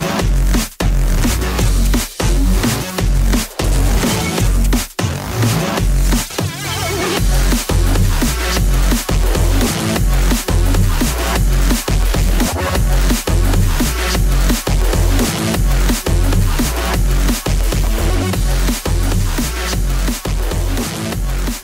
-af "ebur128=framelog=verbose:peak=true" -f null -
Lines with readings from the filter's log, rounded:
Integrated loudness:
  I:         -16.6 LUFS
  Threshold: -26.6 LUFS
Loudness range:
  LRA:         1.6 LU
  Threshold: -36.4 LUFS
  LRA low:   -17.4 LUFS
  LRA high:  -15.8 LUFS
True peak:
  Peak:       -4.3 dBFS